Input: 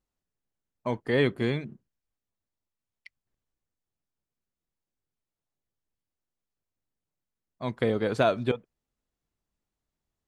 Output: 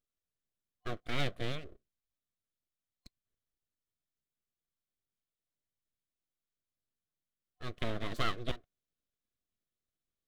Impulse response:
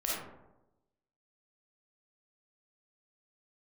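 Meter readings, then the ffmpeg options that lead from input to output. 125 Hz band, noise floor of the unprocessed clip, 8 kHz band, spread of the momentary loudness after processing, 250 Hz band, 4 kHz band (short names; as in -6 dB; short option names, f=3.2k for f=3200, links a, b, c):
-8.5 dB, under -85 dBFS, n/a, 12 LU, -13.5 dB, -2.0 dB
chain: -af "aeval=exprs='abs(val(0))':c=same,superequalizer=9b=0.251:13b=1.58,volume=-6.5dB"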